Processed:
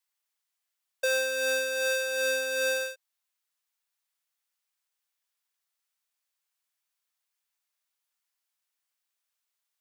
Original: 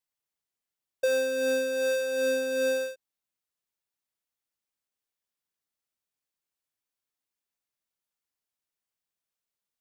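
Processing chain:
high-pass filter 870 Hz 12 dB per octave
level +5.5 dB

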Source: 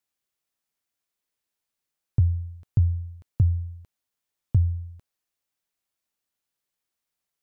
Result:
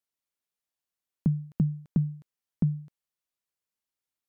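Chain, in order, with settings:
wrong playback speed 45 rpm record played at 78 rpm
level −4 dB

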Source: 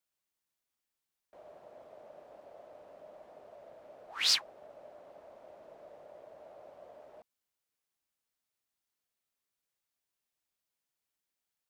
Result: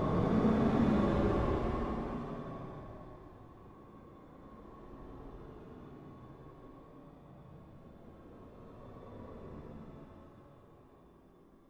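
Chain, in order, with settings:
wind on the microphone 390 Hz −43 dBFS
extreme stretch with random phases 16×, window 0.10 s, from 0:07.11
hollow resonant body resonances 1,100/3,500 Hz, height 14 dB, ringing for 60 ms

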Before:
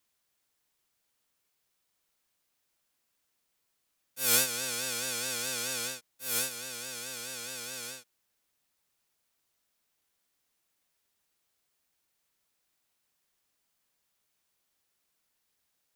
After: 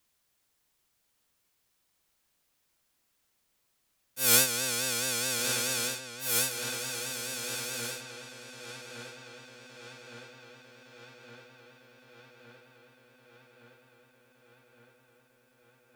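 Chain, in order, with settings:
low-shelf EQ 180 Hz +5 dB
feedback echo with a low-pass in the loop 1,164 ms, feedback 73%, low-pass 4,500 Hz, level −9 dB
level +3 dB

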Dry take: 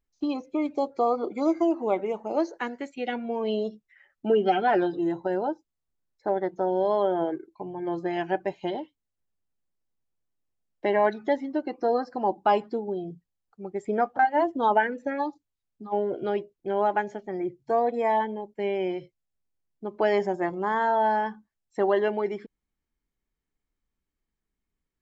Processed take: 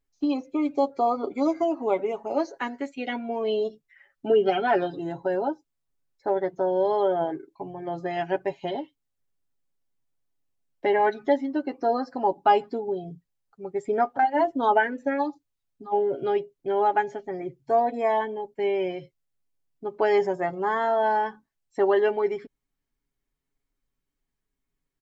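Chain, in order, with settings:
comb filter 7.3 ms, depth 61%

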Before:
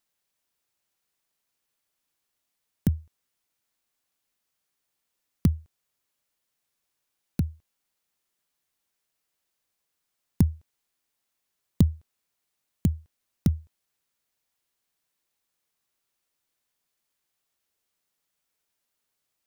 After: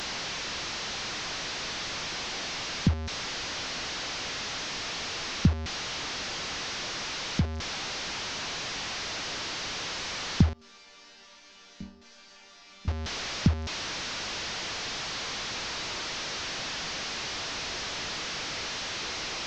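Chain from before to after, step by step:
linear delta modulator 32 kbit/s, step −27.5 dBFS
0:10.53–0:12.88: resonators tuned to a chord G3 minor, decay 0.44 s

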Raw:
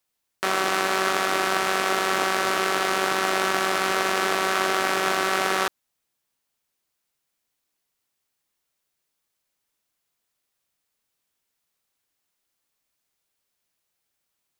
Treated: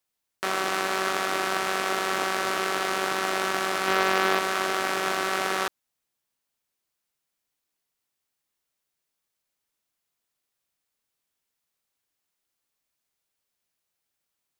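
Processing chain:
0:03.85–0:04.39: double-tracking delay 21 ms −2 dB
level −3.5 dB

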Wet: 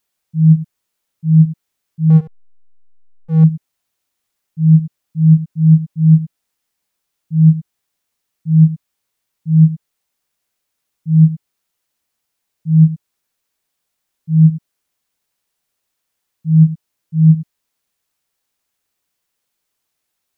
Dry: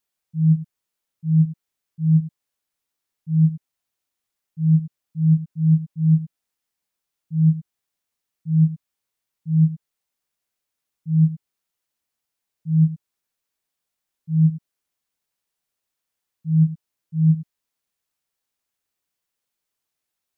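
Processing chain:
0:02.10–0:03.44: slack as between gear wheels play −22 dBFS
level +7.5 dB

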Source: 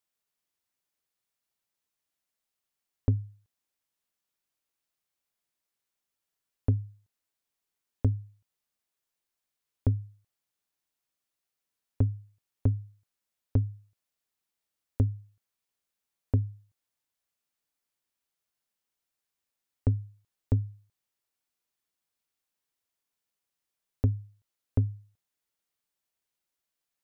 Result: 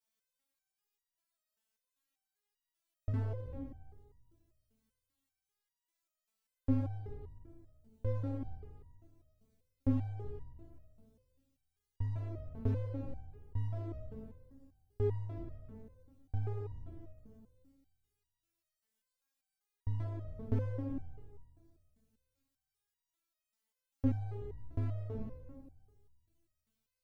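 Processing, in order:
peak hold with a decay on every bin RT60 1.87 s
parametric band 85 Hz +6.5 dB 1.2 octaves
step-sequenced resonator 5.1 Hz 220–960 Hz
level +9 dB

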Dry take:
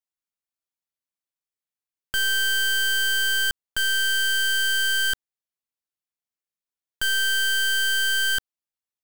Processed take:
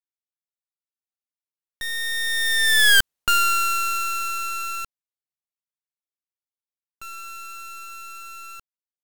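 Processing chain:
source passing by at 0:03.00, 53 m/s, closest 13 metres
level +9 dB

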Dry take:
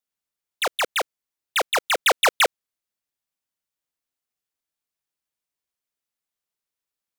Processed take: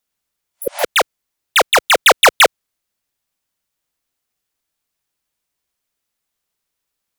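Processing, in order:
healed spectral selection 0:00.55–0:00.81, 580–10,000 Hz both
in parallel at −8 dB: gain into a clipping stage and back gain 19.5 dB
on the sum: low-shelf EQ 91 Hz +5.5 dB
level +7 dB

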